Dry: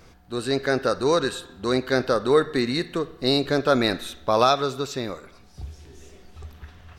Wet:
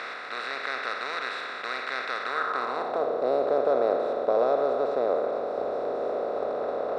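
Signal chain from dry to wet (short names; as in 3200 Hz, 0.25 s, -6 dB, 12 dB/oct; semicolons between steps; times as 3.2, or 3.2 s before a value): per-bin compression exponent 0.2; band-pass sweep 2000 Hz -> 580 Hz, 2.21–3.11; gain -7 dB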